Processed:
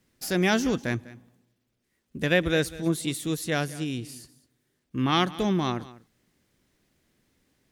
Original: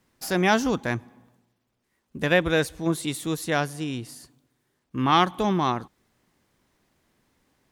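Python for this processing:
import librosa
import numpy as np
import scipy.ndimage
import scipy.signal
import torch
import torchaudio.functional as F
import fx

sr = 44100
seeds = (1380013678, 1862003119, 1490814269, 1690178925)

y = fx.peak_eq(x, sr, hz=950.0, db=-8.5, octaves=1.1)
y = y + 10.0 ** (-18.5 / 20.0) * np.pad(y, (int(199 * sr / 1000.0), 0))[:len(y)]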